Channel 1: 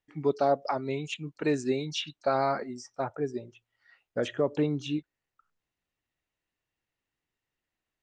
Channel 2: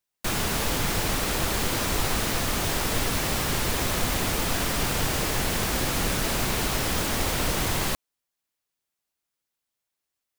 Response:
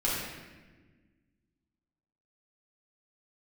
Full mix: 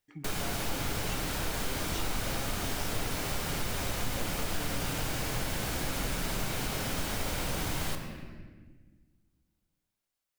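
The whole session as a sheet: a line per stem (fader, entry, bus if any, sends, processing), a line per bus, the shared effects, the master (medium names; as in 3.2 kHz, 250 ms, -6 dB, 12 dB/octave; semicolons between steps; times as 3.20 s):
-3.5 dB, 0.00 s, send -16.5 dB, compression, threshold -37 dBFS, peak gain reduction 16 dB; treble shelf 4.7 kHz +9 dB
-5.5 dB, 0.00 s, send -11 dB, none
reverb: on, RT60 1.3 s, pre-delay 7 ms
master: compression 1.5:1, threshold -39 dBFS, peak gain reduction 7 dB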